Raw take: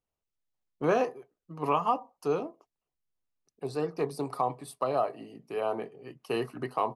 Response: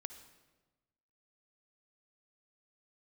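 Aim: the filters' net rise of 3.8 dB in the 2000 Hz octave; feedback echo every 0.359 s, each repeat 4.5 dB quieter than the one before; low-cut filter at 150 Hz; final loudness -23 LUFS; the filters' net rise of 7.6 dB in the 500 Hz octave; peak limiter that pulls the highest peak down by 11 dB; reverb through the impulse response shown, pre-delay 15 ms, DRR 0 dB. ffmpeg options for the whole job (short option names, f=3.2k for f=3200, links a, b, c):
-filter_complex "[0:a]highpass=150,equalizer=f=500:t=o:g=9,equalizer=f=2k:t=o:g=4.5,alimiter=limit=-19dB:level=0:latency=1,aecho=1:1:359|718|1077|1436|1795|2154|2513|2872|3231:0.596|0.357|0.214|0.129|0.0772|0.0463|0.0278|0.0167|0.01,asplit=2[a][b];[1:a]atrim=start_sample=2205,adelay=15[c];[b][c]afir=irnorm=-1:irlink=0,volume=3.5dB[d];[a][d]amix=inputs=2:normalize=0,volume=4dB"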